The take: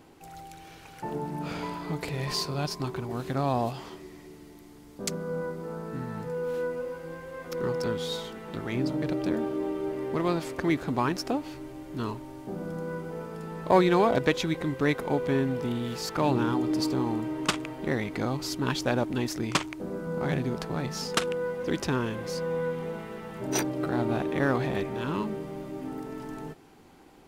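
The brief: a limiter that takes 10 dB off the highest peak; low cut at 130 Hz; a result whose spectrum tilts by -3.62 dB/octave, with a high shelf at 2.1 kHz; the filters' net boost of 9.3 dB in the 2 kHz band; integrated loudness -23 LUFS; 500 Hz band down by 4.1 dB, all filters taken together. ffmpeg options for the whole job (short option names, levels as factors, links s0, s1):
-af "highpass=130,equalizer=f=500:t=o:g=-6,equalizer=f=2000:t=o:g=8.5,highshelf=f=2100:g=6.5,volume=2.24,alimiter=limit=0.447:level=0:latency=1"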